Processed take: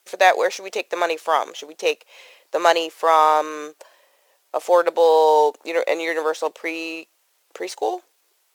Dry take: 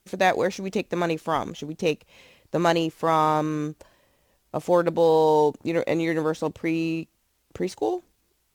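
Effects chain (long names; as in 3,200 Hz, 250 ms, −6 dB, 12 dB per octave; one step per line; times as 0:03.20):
high-pass filter 480 Hz 24 dB per octave
level +6.5 dB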